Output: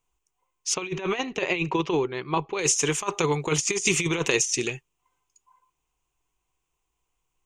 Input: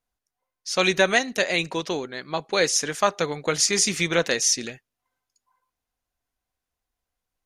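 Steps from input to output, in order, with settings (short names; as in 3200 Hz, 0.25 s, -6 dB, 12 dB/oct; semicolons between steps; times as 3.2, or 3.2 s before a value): ripple EQ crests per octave 0.7, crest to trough 12 dB; negative-ratio compressor -23 dBFS, ratio -0.5; 0.74–2.59 air absorption 200 m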